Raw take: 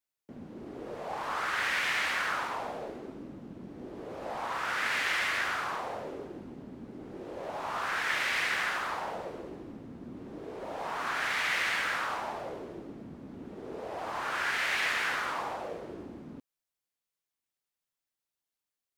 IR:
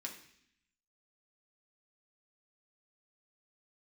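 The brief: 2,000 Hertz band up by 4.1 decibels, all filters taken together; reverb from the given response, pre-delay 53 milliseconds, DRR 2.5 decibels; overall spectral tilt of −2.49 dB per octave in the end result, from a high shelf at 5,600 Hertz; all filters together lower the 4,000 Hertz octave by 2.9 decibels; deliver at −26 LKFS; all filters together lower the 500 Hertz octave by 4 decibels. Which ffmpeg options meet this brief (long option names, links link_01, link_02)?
-filter_complex "[0:a]equalizer=frequency=500:width_type=o:gain=-5.5,equalizer=frequency=2000:width_type=o:gain=7,equalizer=frequency=4000:width_type=o:gain=-5.5,highshelf=frequency=5600:gain=-5.5,asplit=2[link_01][link_02];[1:a]atrim=start_sample=2205,adelay=53[link_03];[link_02][link_03]afir=irnorm=-1:irlink=0,volume=-0.5dB[link_04];[link_01][link_04]amix=inputs=2:normalize=0,volume=-0.5dB"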